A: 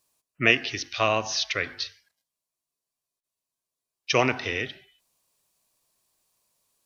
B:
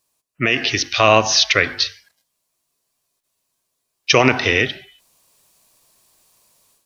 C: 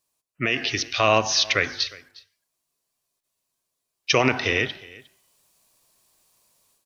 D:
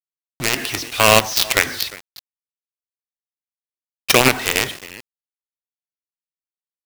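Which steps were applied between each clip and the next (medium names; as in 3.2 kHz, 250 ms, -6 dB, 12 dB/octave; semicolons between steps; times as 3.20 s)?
peak limiter -13.5 dBFS, peak gain reduction 11 dB; level rider gain up to 13 dB; trim +1.5 dB
delay 358 ms -22 dB; trim -6 dB
companded quantiser 2-bit; trim -1 dB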